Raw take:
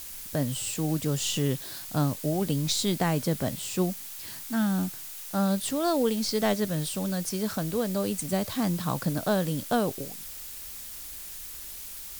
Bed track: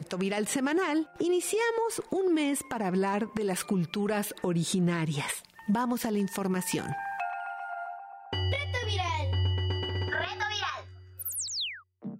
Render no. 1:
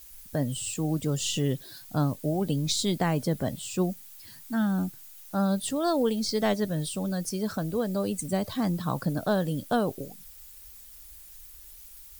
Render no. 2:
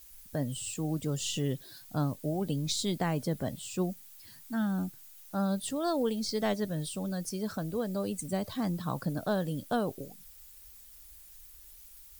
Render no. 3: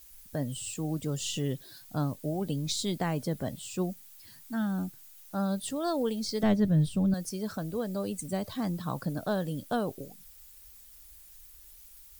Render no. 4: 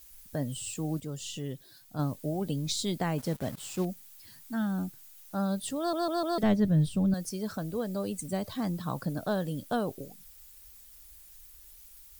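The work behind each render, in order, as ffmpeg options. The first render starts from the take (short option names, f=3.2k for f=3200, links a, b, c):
-af "afftdn=nr=12:nf=-41"
-af "volume=-4.5dB"
-filter_complex "[0:a]asettb=1/sr,asplit=3[a][b][c];[a]atrim=end=6.434[d];[b]atrim=start=6.43:end=7.14,asetpts=PTS-STARTPTS,afade=t=in:d=0.004:c=qsin,afade=t=out:st=0.706:d=0.004:c=qsin,bass=f=250:g=14,treble=f=4k:g=-7[e];[c]atrim=start=7.136[f];[d][e]acrossfade=d=0.004:c1=hsin:c2=qsin[g];[g][f]acrossfade=d=0.004:c1=qsin:c2=hsin"
-filter_complex "[0:a]asettb=1/sr,asplit=3[a][b][c];[a]atrim=end=3.184[d];[b]atrim=start=3.18:end=3.85,asetpts=PTS-STARTPTS,afade=t=in:d=0.004:c=qsin,afade=t=out:st=0.666:d=0.004:c=qsin,acrusher=bits=6:mix=0:aa=0.5[e];[c]atrim=start=3.846[f];[d][e]acrossfade=d=0.004:c1=hsin:c2=qsin[g];[g][f]acrossfade=d=0.004:c1=qsin:c2=hsin,asplit=7[h][i][j][k][l][m][n];[h]atrim=end=1.002[o];[i]atrim=start=0.998:end=1.992,asetpts=PTS-STARTPTS,volume=-5.5dB[p];[j]atrim=start=1.988:end=5.932[q];[k]atrim=start=5.778:end=5.932[r];[l]atrim=start=5.778:end=5.932[s];[m]atrim=start=5.778:end=5.932[t];[n]atrim=start=6.378[u];[o][p]acrossfade=d=0.004:c1=hsin:c2=hsin[v];[v][q]acrossfade=d=0.004:c1=hsin:c2=hsin[w];[w][r]acrossfade=d=0.004:c1=hsin:c2=hsin[x];[x][s]acrossfade=d=0.004:c1=hsin:c2=hsin[y];[y][t]acrossfade=d=0.004:c1=hsin:c2=hsin[z];[z][u]acrossfade=d=0.004:c1=hsin:c2=hsin"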